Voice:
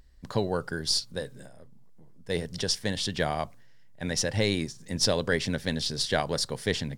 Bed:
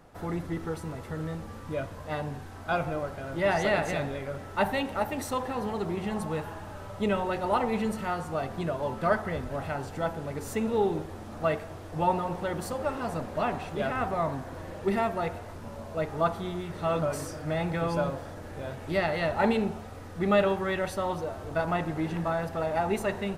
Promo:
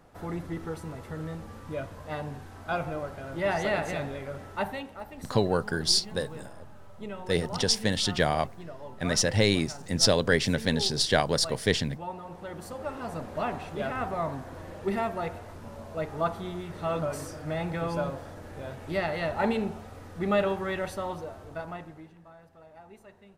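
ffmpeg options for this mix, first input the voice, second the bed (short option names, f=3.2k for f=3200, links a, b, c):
-filter_complex "[0:a]adelay=5000,volume=3dB[a];[1:a]volume=8dB,afade=t=out:st=4.44:d=0.5:silence=0.316228,afade=t=in:st=12.17:d=1.18:silence=0.316228,afade=t=out:st=20.83:d=1.31:silence=0.0891251[b];[a][b]amix=inputs=2:normalize=0"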